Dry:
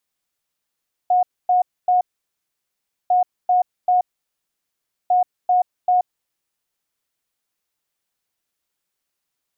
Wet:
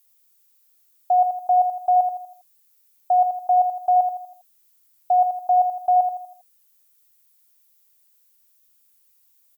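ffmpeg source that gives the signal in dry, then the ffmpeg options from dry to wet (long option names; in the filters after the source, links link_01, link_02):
-f lavfi -i "aevalsrc='0.237*sin(2*PI*726*t)*clip(min(mod(mod(t,2),0.39),0.13-mod(mod(t,2),0.39))/0.005,0,1)*lt(mod(t,2),1.17)':duration=6:sample_rate=44100"
-af "aemphasis=mode=production:type=75fm,aecho=1:1:81|162|243|324|405:0.447|0.192|0.0826|0.0355|0.0153"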